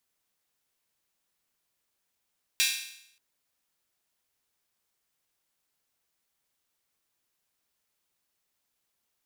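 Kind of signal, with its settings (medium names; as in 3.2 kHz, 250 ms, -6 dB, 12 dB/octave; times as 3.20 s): open hi-hat length 0.58 s, high-pass 2.6 kHz, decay 0.73 s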